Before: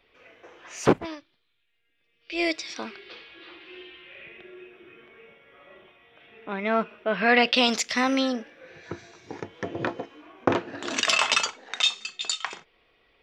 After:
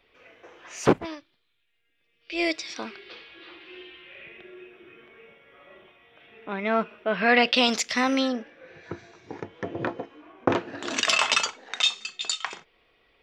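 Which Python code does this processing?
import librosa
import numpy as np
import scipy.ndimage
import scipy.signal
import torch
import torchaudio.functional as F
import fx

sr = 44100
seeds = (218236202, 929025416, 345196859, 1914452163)

y = fx.high_shelf(x, sr, hz=fx.line((8.27, 5600.0), (10.48, 3100.0)), db=-9.5, at=(8.27, 10.48), fade=0.02)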